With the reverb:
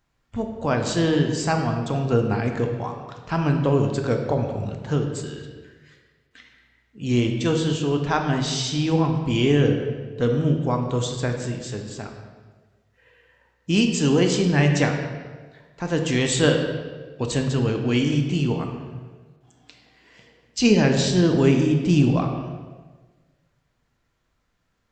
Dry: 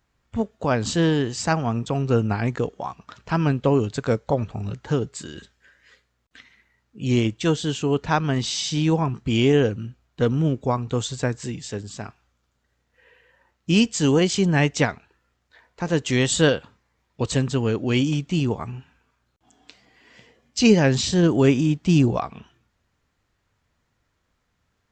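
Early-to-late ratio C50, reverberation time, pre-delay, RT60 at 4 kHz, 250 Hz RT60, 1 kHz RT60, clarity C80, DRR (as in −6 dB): 5.5 dB, 1.4 s, 3 ms, 1.1 s, 1.4 s, 1.3 s, 7.0 dB, 3.0 dB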